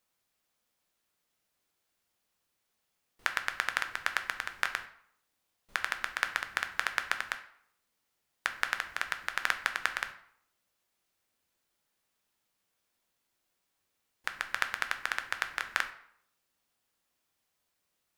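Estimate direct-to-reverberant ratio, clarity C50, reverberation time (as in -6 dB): 7.0 dB, 12.0 dB, 0.70 s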